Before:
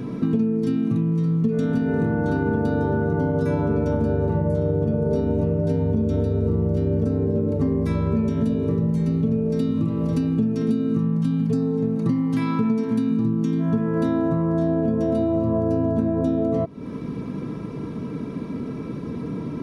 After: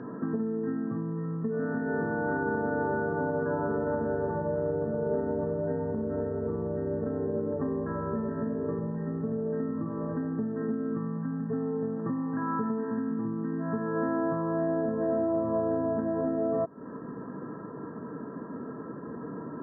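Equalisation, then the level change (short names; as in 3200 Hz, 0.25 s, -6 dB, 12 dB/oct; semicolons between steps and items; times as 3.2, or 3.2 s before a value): HPF 940 Hz 6 dB/oct; brick-wall FIR low-pass 1900 Hz; air absorption 180 m; +2.5 dB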